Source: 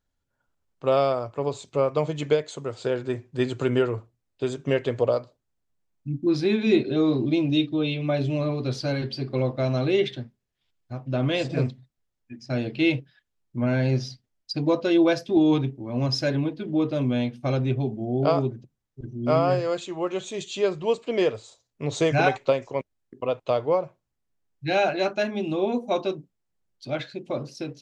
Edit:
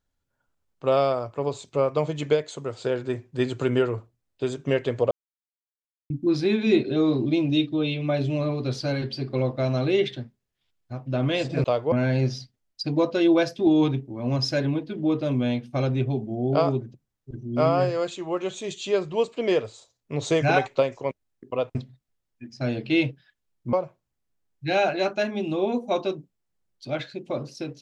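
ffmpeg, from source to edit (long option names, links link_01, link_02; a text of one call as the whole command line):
ffmpeg -i in.wav -filter_complex "[0:a]asplit=7[link_01][link_02][link_03][link_04][link_05][link_06][link_07];[link_01]atrim=end=5.11,asetpts=PTS-STARTPTS,afade=type=out:start_time=5.106:duration=0.004:curve=hsin[link_08];[link_02]atrim=start=5.11:end=6.1,asetpts=PTS-STARTPTS,volume=0[link_09];[link_03]atrim=start=6.1:end=11.642,asetpts=PTS-STARTPTS,afade=type=in:duration=0.004:curve=hsin[link_10];[link_04]atrim=start=23.448:end=23.732[link_11];[link_05]atrim=start=13.618:end=23.452[link_12];[link_06]atrim=start=11.638:end=13.622[link_13];[link_07]atrim=start=23.728[link_14];[link_08][link_09][link_10]concat=n=3:v=0:a=1[link_15];[link_15][link_11]acrossfade=duration=0.004:curve1=hsin:curve2=hsin[link_16];[link_16][link_12]acrossfade=duration=0.004:curve1=hsin:curve2=hsin[link_17];[link_17][link_13]acrossfade=duration=0.004:curve1=hsin:curve2=hsin[link_18];[link_18][link_14]acrossfade=duration=0.004:curve1=hsin:curve2=hsin" out.wav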